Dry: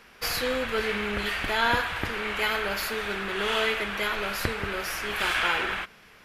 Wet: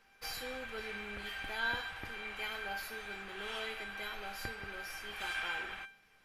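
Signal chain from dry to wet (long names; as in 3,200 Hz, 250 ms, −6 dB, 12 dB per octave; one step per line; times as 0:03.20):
tuned comb filter 790 Hz, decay 0.3 s, mix 90%
level +2.5 dB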